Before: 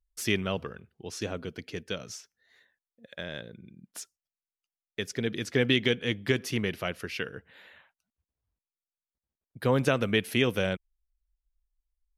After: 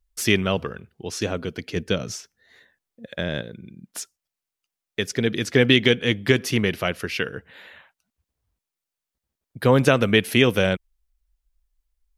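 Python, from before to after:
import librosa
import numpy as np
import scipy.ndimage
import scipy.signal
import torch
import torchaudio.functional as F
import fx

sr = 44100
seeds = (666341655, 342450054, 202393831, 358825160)

y = fx.low_shelf(x, sr, hz=480.0, db=7.0, at=(1.76, 3.42))
y = y * librosa.db_to_amplitude(8.0)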